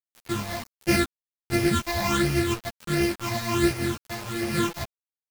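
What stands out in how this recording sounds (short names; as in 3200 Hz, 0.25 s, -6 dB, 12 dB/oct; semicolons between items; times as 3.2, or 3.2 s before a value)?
a buzz of ramps at a fixed pitch in blocks of 128 samples; phasing stages 8, 1.4 Hz, lowest notch 370–1100 Hz; a quantiser's noise floor 6-bit, dither none; a shimmering, thickened sound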